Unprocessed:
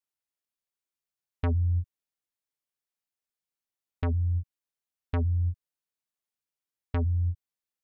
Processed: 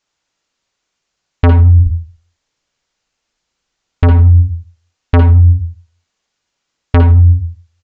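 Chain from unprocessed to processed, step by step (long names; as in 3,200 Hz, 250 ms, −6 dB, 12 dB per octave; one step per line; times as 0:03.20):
0:01.79–0:04.08: low-shelf EQ 61 Hz +9 dB
on a send at −3 dB: convolution reverb RT60 0.40 s, pre-delay 54 ms
on the sum: downsampling to 16,000 Hz
boost into a limiter +22.5 dB
level −1 dB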